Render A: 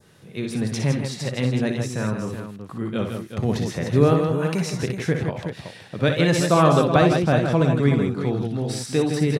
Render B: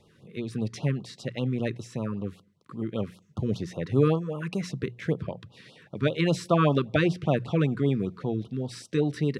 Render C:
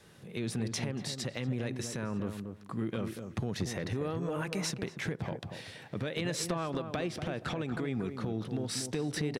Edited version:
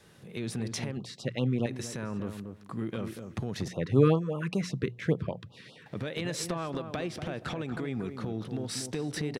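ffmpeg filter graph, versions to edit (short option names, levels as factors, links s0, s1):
-filter_complex "[1:a]asplit=2[s0][s1];[2:a]asplit=3[s2][s3][s4];[s2]atrim=end=0.972[s5];[s0]atrim=start=0.968:end=1.662[s6];[s3]atrim=start=1.658:end=3.682[s7];[s1]atrim=start=3.678:end=5.862[s8];[s4]atrim=start=5.858[s9];[s5][s6]acrossfade=d=0.004:c1=hsin:c2=hsin[s10];[s10][s7]acrossfade=d=0.004:c1=hsin:c2=hsin[s11];[s11][s8]acrossfade=d=0.004:c1=hsin:c2=hsin[s12];[s12][s9]acrossfade=d=0.004:c1=hsin:c2=hsin"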